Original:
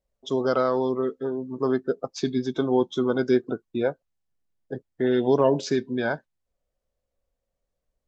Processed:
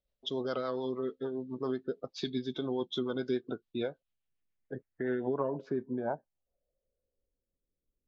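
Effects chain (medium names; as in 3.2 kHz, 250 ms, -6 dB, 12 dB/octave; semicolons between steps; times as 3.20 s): low-pass sweep 3.7 kHz -> 340 Hz, 3.88–7.49 s; compression 2:1, threshold -26 dBFS, peak gain reduction 7.5 dB; rotary cabinet horn 7 Hz; treble shelf 5.9 kHz +6.5 dB; trim -5 dB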